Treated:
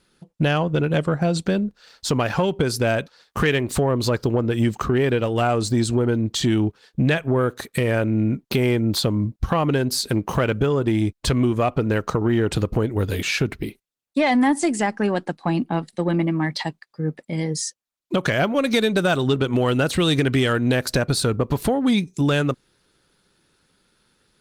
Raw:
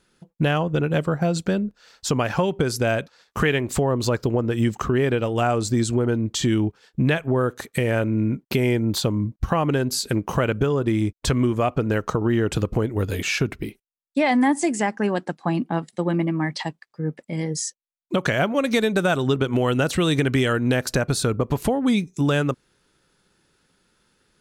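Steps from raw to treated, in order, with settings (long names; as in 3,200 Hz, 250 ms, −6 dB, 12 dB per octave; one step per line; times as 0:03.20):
parametric band 4,200 Hz +5 dB 0.73 octaves
soft clipping −11 dBFS, distortion −23 dB
level +2 dB
Opus 32 kbit/s 48,000 Hz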